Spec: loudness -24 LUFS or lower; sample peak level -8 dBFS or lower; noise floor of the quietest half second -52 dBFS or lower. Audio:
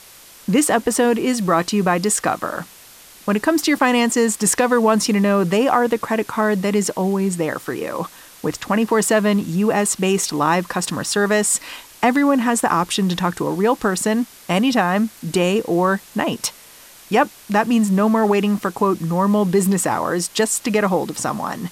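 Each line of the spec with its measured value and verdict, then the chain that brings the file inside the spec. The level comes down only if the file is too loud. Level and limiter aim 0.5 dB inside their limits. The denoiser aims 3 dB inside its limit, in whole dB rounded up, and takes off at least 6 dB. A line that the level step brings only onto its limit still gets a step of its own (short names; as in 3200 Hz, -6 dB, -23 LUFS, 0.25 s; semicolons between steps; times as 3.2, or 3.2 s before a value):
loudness -18.5 LUFS: fail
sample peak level -4.0 dBFS: fail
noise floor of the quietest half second -44 dBFS: fail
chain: denoiser 6 dB, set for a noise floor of -44 dBFS; gain -6 dB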